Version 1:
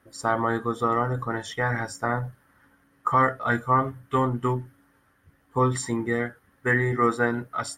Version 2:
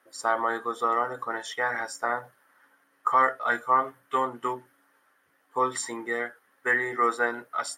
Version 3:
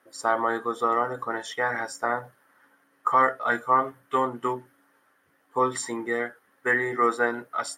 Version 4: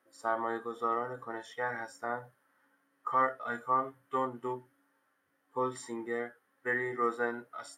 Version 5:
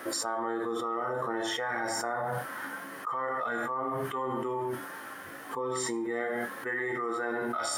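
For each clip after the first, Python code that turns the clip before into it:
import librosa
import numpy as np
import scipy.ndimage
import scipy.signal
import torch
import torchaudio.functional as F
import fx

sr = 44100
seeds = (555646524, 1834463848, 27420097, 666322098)

y1 = scipy.signal.sosfilt(scipy.signal.butter(2, 500.0, 'highpass', fs=sr, output='sos'), x)
y2 = fx.low_shelf(y1, sr, hz=420.0, db=7.5)
y3 = fx.hpss(y2, sr, part='percussive', gain_db=-11)
y3 = y3 * 10.0 ** (-6.5 / 20.0)
y4 = fx.rev_gated(y3, sr, seeds[0], gate_ms=190, shape='falling', drr_db=4.5)
y4 = fx.env_flatten(y4, sr, amount_pct=100)
y4 = y4 * 10.0 ** (-8.5 / 20.0)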